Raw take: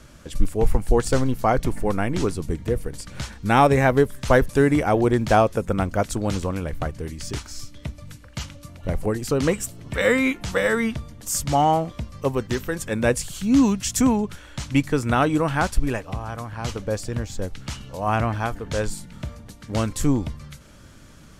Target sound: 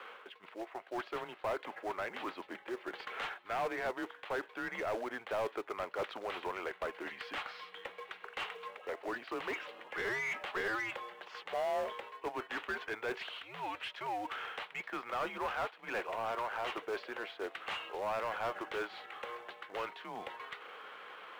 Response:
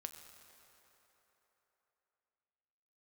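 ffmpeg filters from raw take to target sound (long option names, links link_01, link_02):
-filter_complex "[0:a]areverse,acompressor=threshold=-28dB:ratio=20,areverse,highpass=frequency=550:width_type=q:width=0.5412,highpass=frequency=550:width_type=q:width=1.307,lowpass=frequency=3500:width_type=q:width=0.5176,lowpass=frequency=3500:width_type=q:width=0.7071,lowpass=frequency=3500:width_type=q:width=1.932,afreqshift=-110,acrusher=bits=4:mode=log:mix=0:aa=0.000001,asplit=2[link_01][link_02];[link_02]highpass=frequency=720:poles=1,volume=19dB,asoftclip=type=tanh:threshold=-23.5dB[link_03];[link_01][link_03]amix=inputs=2:normalize=0,lowpass=frequency=2300:poles=1,volume=-6dB,volume=-4dB"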